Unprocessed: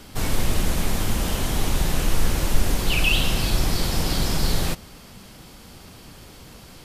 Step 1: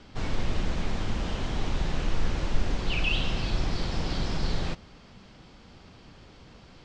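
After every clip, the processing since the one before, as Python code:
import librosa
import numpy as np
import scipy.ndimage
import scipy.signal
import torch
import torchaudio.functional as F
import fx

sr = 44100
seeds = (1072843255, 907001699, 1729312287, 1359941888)

y = scipy.signal.sosfilt(scipy.signal.bessel(8, 4100.0, 'lowpass', norm='mag', fs=sr, output='sos'), x)
y = F.gain(torch.from_numpy(y), -6.0).numpy()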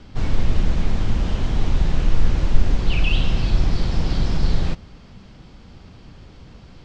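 y = fx.low_shelf(x, sr, hz=220.0, db=9.0)
y = F.gain(torch.from_numpy(y), 2.0).numpy()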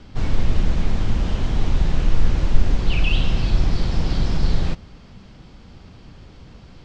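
y = x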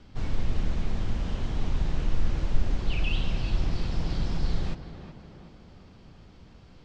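y = fx.echo_tape(x, sr, ms=371, feedback_pct=62, wet_db=-7.5, lp_hz=2000.0, drive_db=3.0, wow_cents=14)
y = F.gain(torch.from_numpy(y), -8.5).numpy()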